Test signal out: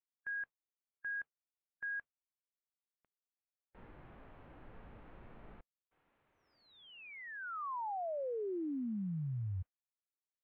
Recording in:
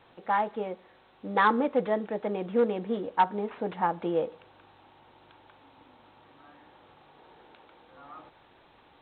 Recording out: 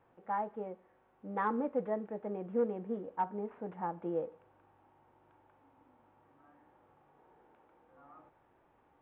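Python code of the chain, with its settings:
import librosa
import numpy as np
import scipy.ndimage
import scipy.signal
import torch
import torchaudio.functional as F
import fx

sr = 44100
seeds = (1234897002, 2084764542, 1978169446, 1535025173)

y = fx.mod_noise(x, sr, seeds[0], snr_db=26)
y = fx.hpss(y, sr, part='percussive', gain_db=-5)
y = scipy.ndimage.gaussian_filter1d(y, 4.2, mode='constant')
y = F.gain(torch.from_numpy(y), -6.5).numpy()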